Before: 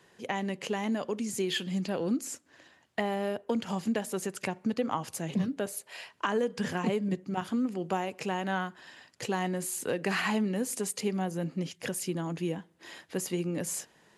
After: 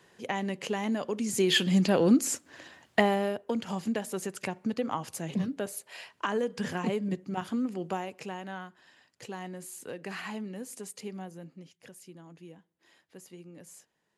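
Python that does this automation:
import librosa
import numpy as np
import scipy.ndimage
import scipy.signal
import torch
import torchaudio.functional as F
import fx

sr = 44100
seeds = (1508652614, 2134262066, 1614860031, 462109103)

y = fx.gain(x, sr, db=fx.line((1.13, 0.5), (1.59, 8.0), (2.99, 8.0), (3.39, -1.0), (7.81, -1.0), (8.55, -9.0), (11.2, -9.0), (11.69, -16.5)))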